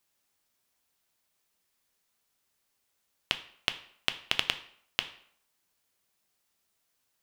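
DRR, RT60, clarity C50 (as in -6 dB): 9.0 dB, 0.65 s, 14.5 dB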